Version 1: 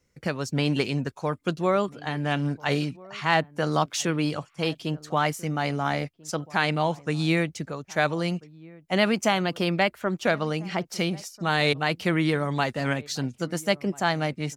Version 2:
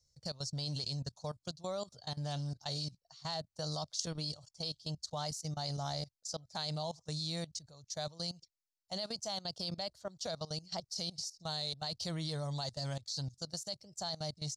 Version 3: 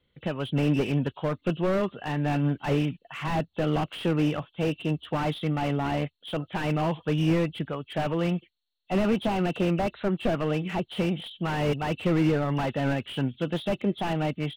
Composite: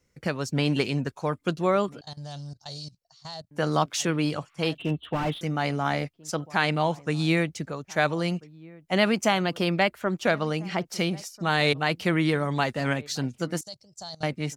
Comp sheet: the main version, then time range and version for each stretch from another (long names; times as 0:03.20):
1
0:02.01–0:03.51: punch in from 2
0:04.78–0:05.41: punch in from 3
0:13.61–0:14.23: punch in from 2